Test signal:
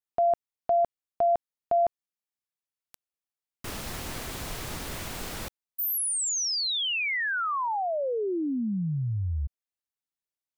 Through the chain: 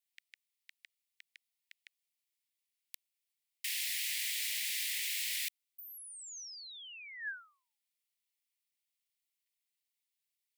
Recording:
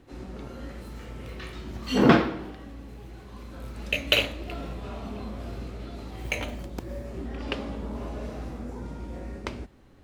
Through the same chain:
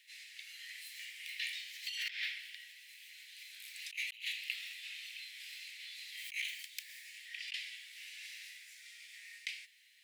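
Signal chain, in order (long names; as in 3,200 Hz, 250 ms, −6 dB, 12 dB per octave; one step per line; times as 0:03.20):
Butterworth high-pass 1,900 Hz 72 dB per octave
parametric band 6,200 Hz −3.5 dB 0.49 octaves
compressor whose output falls as the input rises −42 dBFS, ratio −1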